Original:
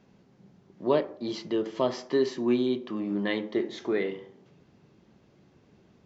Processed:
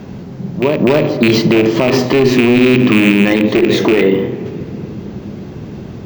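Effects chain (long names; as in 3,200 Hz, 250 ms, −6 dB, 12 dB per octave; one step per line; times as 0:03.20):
loose part that buzzes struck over −35 dBFS, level −18 dBFS
low-shelf EQ 460 Hz +7 dB
echo ahead of the sound 249 ms −16 dB
in parallel at +1 dB: downward compressor, threshold −35 dBFS, peak gain reduction 19 dB
on the sum: bad sample-rate conversion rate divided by 2×, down filtered, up hold
asymmetric clip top −18 dBFS, bottom −9.5 dBFS
on a send at −17 dB: low-shelf EQ 100 Hz +11.5 dB + convolution reverb RT60 3.5 s, pre-delay 44 ms
on the sum: boost into a limiter +19.5 dB
level −1 dB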